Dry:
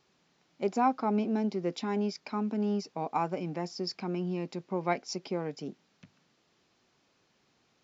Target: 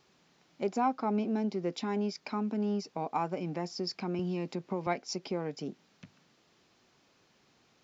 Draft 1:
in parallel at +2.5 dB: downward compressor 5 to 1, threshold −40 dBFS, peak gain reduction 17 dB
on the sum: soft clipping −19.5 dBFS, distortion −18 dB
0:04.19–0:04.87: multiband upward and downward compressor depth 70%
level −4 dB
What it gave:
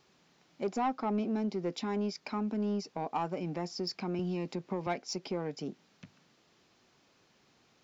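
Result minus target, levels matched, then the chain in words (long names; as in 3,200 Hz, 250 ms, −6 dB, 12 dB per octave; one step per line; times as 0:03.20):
soft clipping: distortion +17 dB
in parallel at +2.5 dB: downward compressor 5 to 1, threshold −40 dBFS, peak gain reduction 17 dB
on the sum: soft clipping −9 dBFS, distortion −35 dB
0:04.19–0:04.87: multiband upward and downward compressor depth 70%
level −4 dB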